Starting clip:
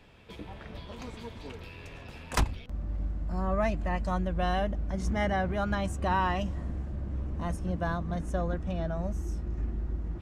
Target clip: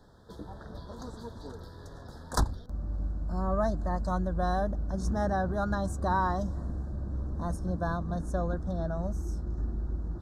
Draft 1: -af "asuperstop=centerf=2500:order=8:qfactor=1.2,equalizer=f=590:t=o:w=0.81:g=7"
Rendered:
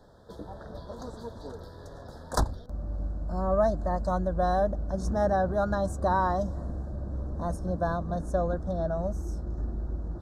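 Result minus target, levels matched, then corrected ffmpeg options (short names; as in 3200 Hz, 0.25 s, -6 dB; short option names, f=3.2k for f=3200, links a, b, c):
500 Hz band +3.5 dB
-af "asuperstop=centerf=2500:order=8:qfactor=1.2"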